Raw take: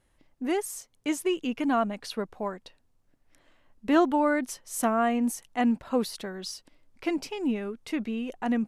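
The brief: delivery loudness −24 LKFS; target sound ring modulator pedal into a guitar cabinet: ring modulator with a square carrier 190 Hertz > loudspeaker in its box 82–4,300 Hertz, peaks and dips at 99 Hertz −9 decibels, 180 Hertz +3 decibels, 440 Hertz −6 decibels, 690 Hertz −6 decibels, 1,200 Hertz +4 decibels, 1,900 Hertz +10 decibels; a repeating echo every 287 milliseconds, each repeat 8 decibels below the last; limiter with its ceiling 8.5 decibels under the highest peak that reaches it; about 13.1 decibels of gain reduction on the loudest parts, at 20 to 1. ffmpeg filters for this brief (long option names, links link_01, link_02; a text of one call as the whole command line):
ffmpeg -i in.wav -af "acompressor=threshold=-29dB:ratio=20,alimiter=level_in=4dB:limit=-24dB:level=0:latency=1,volume=-4dB,aecho=1:1:287|574|861|1148|1435:0.398|0.159|0.0637|0.0255|0.0102,aeval=exprs='val(0)*sgn(sin(2*PI*190*n/s))':channel_layout=same,highpass=82,equalizer=frequency=99:width_type=q:width=4:gain=-9,equalizer=frequency=180:width_type=q:width=4:gain=3,equalizer=frequency=440:width_type=q:width=4:gain=-6,equalizer=frequency=690:width_type=q:width=4:gain=-6,equalizer=frequency=1200:width_type=q:width=4:gain=4,equalizer=frequency=1900:width_type=q:width=4:gain=10,lowpass=frequency=4300:width=0.5412,lowpass=frequency=4300:width=1.3066,volume=13.5dB" out.wav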